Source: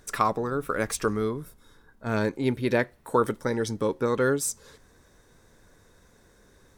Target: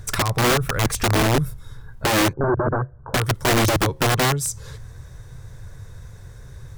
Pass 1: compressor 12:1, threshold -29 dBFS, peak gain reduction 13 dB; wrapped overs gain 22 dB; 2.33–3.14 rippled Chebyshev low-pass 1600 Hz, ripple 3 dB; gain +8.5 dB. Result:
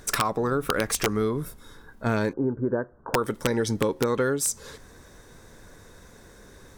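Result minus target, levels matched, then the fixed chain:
125 Hz band -4.0 dB
compressor 12:1, threshold -29 dBFS, peak gain reduction 13 dB; resonant low shelf 170 Hz +11.5 dB, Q 3; wrapped overs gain 22 dB; 2.33–3.14 rippled Chebyshev low-pass 1600 Hz, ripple 3 dB; gain +8.5 dB

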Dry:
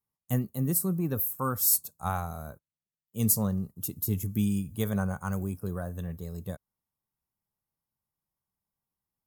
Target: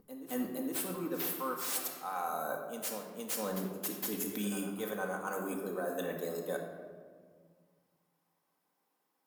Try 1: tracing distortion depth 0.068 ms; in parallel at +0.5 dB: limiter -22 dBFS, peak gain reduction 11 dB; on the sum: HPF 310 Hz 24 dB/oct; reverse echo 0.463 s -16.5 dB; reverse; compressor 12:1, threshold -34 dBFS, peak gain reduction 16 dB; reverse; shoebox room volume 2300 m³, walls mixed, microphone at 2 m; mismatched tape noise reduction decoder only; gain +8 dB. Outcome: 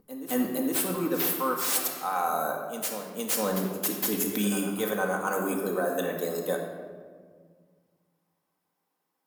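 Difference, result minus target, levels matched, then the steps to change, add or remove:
compressor: peak gain reduction -8.5 dB
change: compressor 12:1, threshold -43.5 dBFS, peak gain reduction 25 dB

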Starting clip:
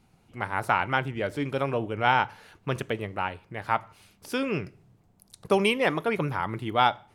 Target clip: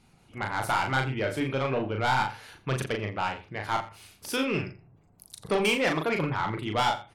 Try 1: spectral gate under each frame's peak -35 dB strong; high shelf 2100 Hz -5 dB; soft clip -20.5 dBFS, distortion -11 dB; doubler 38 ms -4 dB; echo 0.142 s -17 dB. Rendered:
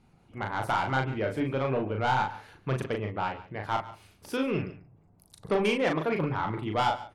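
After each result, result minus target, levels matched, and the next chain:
echo 57 ms late; 4000 Hz band -4.0 dB
spectral gate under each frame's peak -35 dB strong; high shelf 2100 Hz -5 dB; soft clip -20.5 dBFS, distortion -11 dB; doubler 38 ms -4 dB; echo 85 ms -17 dB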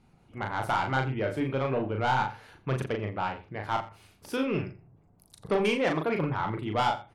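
4000 Hz band -4.0 dB
spectral gate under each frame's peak -35 dB strong; high shelf 2100 Hz +6 dB; soft clip -20.5 dBFS, distortion -8 dB; doubler 38 ms -4 dB; echo 85 ms -17 dB

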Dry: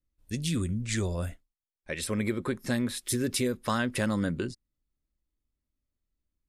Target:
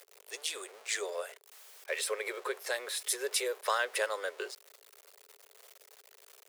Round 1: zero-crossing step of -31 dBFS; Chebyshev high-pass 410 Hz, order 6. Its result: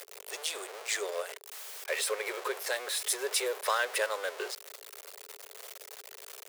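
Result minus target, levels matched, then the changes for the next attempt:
zero-crossing step: distortion +9 dB
change: zero-crossing step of -41.5 dBFS

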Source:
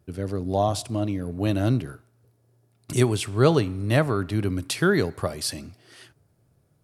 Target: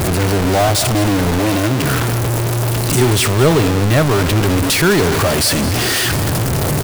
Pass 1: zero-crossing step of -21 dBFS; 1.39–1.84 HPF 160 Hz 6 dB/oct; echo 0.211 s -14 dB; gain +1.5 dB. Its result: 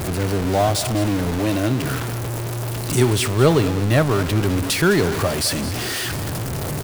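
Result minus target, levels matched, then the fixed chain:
zero-crossing step: distortion -5 dB
zero-crossing step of -12 dBFS; 1.39–1.84 HPF 160 Hz 6 dB/oct; echo 0.211 s -14 dB; gain +1.5 dB

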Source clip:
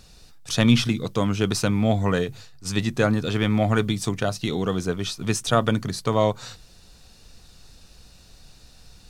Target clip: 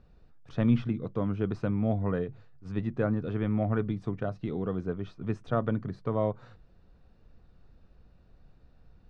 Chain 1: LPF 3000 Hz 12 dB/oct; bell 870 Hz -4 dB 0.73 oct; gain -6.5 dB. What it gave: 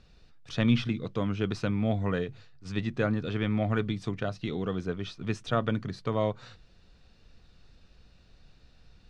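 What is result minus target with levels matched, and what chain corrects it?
4000 Hz band +13.5 dB
LPF 1200 Hz 12 dB/oct; bell 870 Hz -4 dB 0.73 oct; gain -6.5 dB

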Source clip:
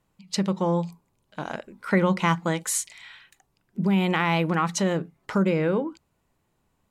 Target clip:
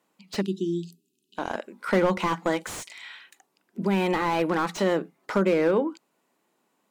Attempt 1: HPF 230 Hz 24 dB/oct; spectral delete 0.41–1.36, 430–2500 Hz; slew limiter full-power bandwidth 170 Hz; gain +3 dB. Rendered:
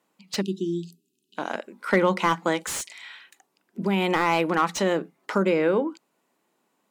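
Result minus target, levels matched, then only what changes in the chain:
slew limiter: distortion -6 dB
change: slew limiter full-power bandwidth 65.5 Hz

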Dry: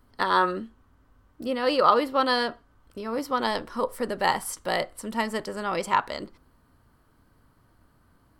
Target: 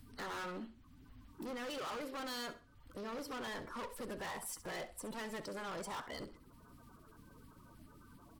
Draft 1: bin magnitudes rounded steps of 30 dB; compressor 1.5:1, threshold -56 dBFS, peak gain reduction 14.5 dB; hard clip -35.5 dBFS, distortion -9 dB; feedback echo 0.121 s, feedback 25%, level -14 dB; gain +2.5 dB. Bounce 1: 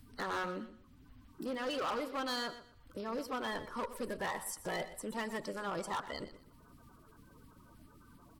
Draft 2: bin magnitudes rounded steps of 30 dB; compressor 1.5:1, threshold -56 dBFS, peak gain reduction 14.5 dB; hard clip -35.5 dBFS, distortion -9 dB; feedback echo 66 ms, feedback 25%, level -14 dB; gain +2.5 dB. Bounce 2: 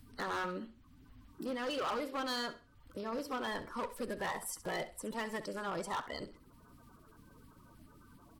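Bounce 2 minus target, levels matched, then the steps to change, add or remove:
hard clip: distortion -5 dB
change: hard clip -43.5 dBFS, distortion -4 dB

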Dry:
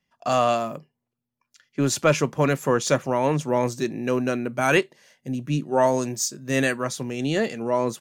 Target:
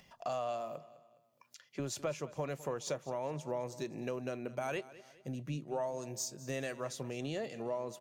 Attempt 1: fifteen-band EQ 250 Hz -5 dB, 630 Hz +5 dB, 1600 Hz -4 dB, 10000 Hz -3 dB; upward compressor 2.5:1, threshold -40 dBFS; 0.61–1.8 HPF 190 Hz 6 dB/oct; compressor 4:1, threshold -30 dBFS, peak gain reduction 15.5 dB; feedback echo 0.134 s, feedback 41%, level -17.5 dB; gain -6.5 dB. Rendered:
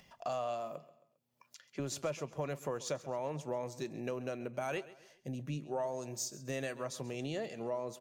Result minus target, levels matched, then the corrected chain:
echo 73 ms early
fifteen-band EQ 250 Hz -5 dB, 630 Hz +5 dB, 1600 Hz -4 dB, 10000 Hz -3 dB; upward compressor 2.5:1, threshold -40 dBFS; 0.61–1.8 HPF 190 Hz 6 dB/oct; compressor 4:1, threshold -30 dBFS, peak gain reduction 15.5 dB; feedback echo 0.207 s, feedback 41%, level -17.5 dB; gain -6.5 dB

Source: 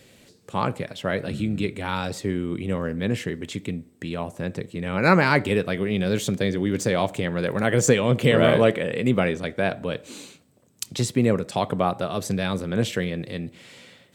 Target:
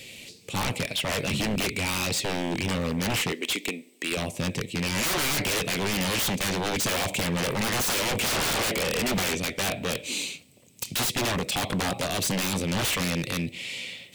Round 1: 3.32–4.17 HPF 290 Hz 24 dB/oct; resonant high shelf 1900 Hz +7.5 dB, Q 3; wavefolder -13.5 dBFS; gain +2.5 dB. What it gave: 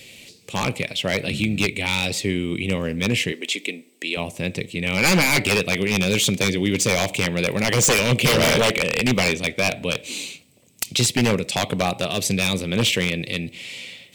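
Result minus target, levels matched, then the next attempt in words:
wavefolder: distortion -12 dB
3.32–4.17 HPF 290 Hz 24 dB/oct; resonant high shelf 1900 Hz +7.5 dB, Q 3; wavefolder -23.5 dBFS; gain +2.5 dB

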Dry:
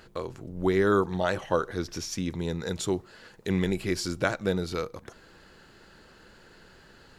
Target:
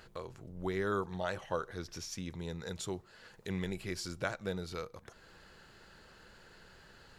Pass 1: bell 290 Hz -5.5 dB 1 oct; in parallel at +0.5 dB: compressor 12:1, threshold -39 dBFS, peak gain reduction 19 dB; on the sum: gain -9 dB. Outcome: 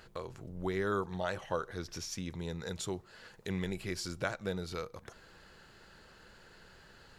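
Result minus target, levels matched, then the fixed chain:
compressor: peak gain reduction -9 dB
bell 290 Hz -5.5 dB 1 oct; in parallel at +0.5 dB: compressor 12:1, threshold -49 dBFS, peak gain reduction 28 dB; on the sum: gain -9 dB

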